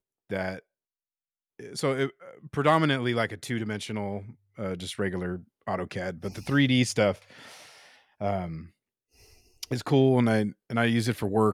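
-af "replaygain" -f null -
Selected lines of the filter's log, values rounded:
track_gain = +7.2 dB
track_peak = 0.227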